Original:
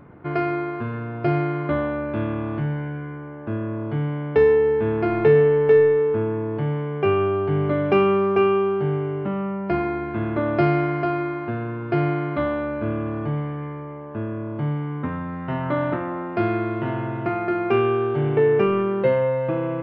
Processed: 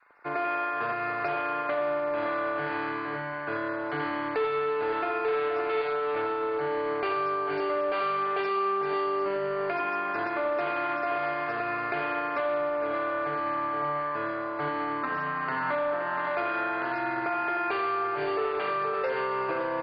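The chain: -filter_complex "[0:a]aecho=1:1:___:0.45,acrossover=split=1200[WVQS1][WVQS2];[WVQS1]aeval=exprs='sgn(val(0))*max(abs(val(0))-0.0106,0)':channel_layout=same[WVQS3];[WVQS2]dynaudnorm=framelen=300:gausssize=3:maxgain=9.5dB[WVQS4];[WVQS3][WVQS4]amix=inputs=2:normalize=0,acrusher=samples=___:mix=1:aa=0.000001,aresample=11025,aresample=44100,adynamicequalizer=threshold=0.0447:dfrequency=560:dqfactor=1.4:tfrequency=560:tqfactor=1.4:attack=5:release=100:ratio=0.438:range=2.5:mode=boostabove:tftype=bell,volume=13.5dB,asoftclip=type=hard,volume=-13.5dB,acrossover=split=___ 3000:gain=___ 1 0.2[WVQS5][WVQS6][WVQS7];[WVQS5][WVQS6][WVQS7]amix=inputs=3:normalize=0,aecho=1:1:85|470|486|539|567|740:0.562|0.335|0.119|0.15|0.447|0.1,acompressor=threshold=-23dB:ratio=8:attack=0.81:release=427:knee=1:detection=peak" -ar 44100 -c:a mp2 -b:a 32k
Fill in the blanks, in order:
6.9, 6, 370, 0.0891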